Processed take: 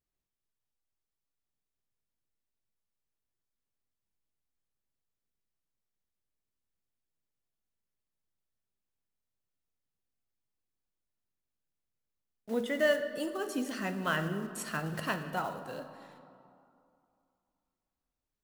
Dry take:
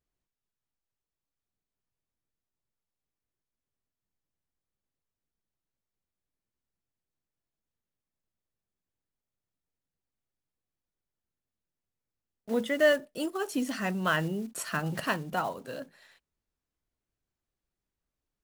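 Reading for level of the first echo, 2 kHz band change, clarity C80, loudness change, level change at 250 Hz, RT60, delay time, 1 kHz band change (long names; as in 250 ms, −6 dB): no echo audible, −3.5 dB, 10.5 dB, −3.5 dB, −3.5 dB, 2.7 s, no echo audible, −3.5 dB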